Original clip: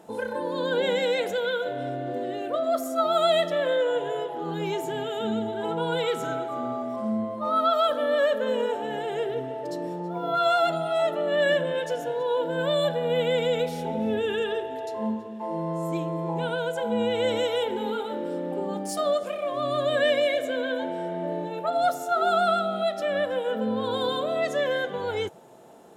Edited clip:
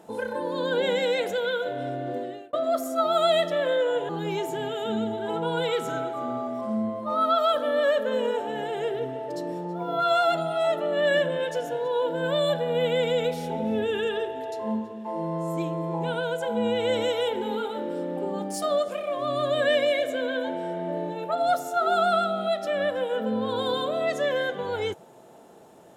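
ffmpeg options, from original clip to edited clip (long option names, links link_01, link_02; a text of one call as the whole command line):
ffmpeg -i in.wav -filter_complex "[0:a]asplit=3[link_01][link_02][link_03];[link_01]atrim=end=2.53,asetpts=PTS-STARTPTS,afade=type=out:start_time=2.15:duration=0.38[link_04];[link_02]atrim=start=2.53:end=4.092,asetpts=PTS-STARTPTS,afade=type=in:duration=0.004:curve=hsin[link_05];[link_03]atrim=start=4.438[link_06];[link_04][link_05]concat=n=2:v=0:a=1[link_07];[link_07][link_06]acrossfade=duration=0.004:curve1=hsin:curve2=hsin" out.wav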